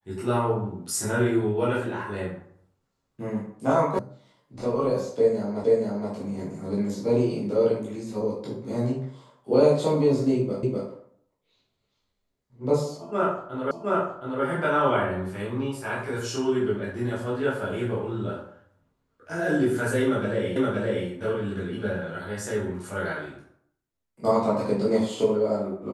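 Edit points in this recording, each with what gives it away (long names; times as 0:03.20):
0:03.99: cut off before it has died away
0:05.64: the same again, the last 0.47 s
0:10.63: the same again, the last 0.25 s
0:13.71: the same again, the last 0.72 s
0:20.56: the same again, the last 0.52 s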